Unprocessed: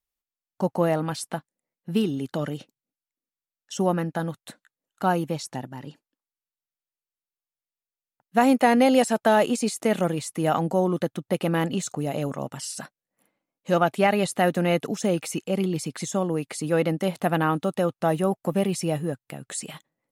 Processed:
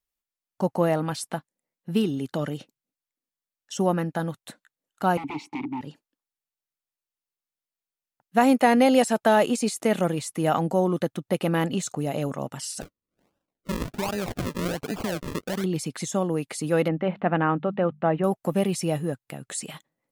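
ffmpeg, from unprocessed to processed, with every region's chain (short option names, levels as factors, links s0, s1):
-filter_complex "[0:a]asettb=1/sr,asplit=3[s0][s1][s2];[s0]atrim=end=5.174[s3];[s1]atrim=start=5.17:end=5.81,asetpts=PTS-STARTPTS,afade=t=in:d=0.004:c=qsin,afade=t=out:st=0.636:d=0.004:c=qsin,highshelf=f=9300:g=-3.5,aeval=exprs='0.178*sin(PI/2*7.08*val(0)/0.178)':c=same,asplit=3[s4][s5][s6];[s4]bandpass=f=300:t=q:w=8,volume=1[s7];[s5]bandpass=f=870:t=q:w=8,volume=0.501[s8];[s6]bandpass=f=2240:t=q:w=8,volume=0.355[s9];[s7][s8][s9]amix=inputs=3:normalize=0[s10];[s2]atrim=start=5.806[s11];[s3][s10]acrossfade=d=0.004:c1=hsin:c2=qsin[s12];[s12][s11]acrossfade=d=0.004:c1=qsin:c2=hsin,asettb=1/sr,asplit=3[s13][s14][s15];[s13]atrim=end=12.814[s16];[s14]atrim=start=12.81:end=15.64,asetpts=PTS-STARTPTS,afade=t=in:d=0.004:c=qsin,afade=t=out:st=2.826:d=0.004:c=qsin,acompressor=threshold=0.0708:ratio=12:attack=3.2:release=140:knee=1:detection=peak,acrusher=samples=40:mix=1:aa=0.000001:lfo=1:lforange=40:lforate=1.3[s17];[s15]atrim=start=15.636[s18];[s16][s17]acrossfade=d=0.004:c1=hsin:c2=qsin[s19];[s19][s18]acrossfade=d=0.004:c1=qsin:c2=hsin,asettb=1/sr,asplit=3[s20][s21][s22];[s20]atrim=end=16.884[s23];[s21]atrim=start=16.88:end=18.24,asetpts=PTS-STARTPTS,afade=t=in:d=0.004:c=qsin,afade=t=out:st=1.356:d=0.004:c=qsin,lowpass=f=2600:w=0.5412,lowpass=f=2600:w=1.3066,bandreject=f=50:t=h:w=6,bandreject=f=100:t=h:w=6,bandreject=f=150:t=h:w=6,bandreject=f=200:t=h:w=6[s24];[s22]atrim=start=18.236[s25];[s23][s24]acrossfade=d=0.004:c1=hsin:c2=qsin[s26];[s26][s25]acrossfade=d=0.004:c1=qsin:c2=hsin"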